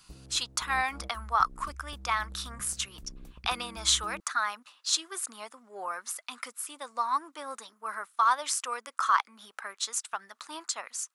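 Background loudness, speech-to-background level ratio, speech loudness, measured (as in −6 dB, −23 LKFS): −48.5 LKFS, 17.5 dB, −31.0 LKFS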